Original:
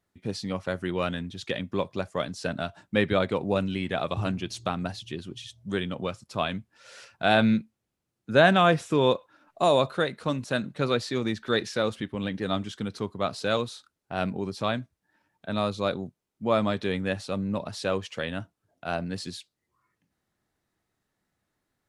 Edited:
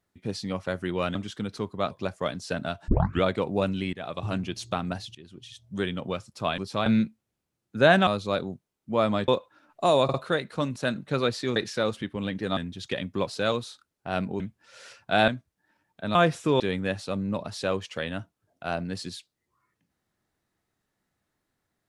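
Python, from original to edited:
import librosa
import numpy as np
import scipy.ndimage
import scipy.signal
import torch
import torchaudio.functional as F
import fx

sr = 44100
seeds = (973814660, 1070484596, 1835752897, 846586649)

y = fx.edit(x, sr, fx.swap(start_s=1.15, length_s=0.7, other_s=12.56, other_length_s=0.76),
    fx.tape_start(start_s=2.82, length_s=0.35),
    fx.fade_in_from(start_s=3.87, length_s=0.47, floor_db=-12.5),
    fx.fade_in_from(start_s=5.09, length_s=0.59, floor_db=-18.5),
    fx.swap(start_s=6.52, length_s=0.88, other_s=14.45, other_length_s=0.28),
    fx.swap(start_s=8.61, length_s=0.45, other_s=15.6, other_length_s=1.21),
    fx.stutter(start_s=9.82, slice_s=0.05, count=3),
    fx.cut(start_s=11.24, length_s=0.31), tone=tone)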